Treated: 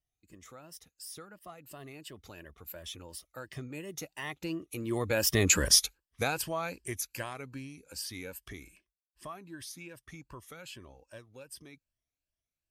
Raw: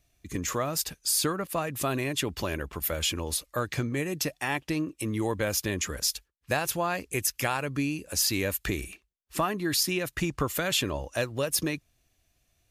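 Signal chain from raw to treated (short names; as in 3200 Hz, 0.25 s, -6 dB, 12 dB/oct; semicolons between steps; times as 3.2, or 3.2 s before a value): moving spectral ripple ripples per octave 1.3, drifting +2.7 Hz, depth 10 dB; Doppler pass-by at 5.61, 19 m/s, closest 4 m; gain +6 dB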